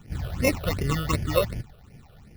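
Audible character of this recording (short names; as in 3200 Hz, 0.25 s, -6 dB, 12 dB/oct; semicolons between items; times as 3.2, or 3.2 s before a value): aliases and images of a low sample rate 1600 Hz, jitter 0%; phasing stages 8, 2.7 Hz, lowest notch 260–1200 Hz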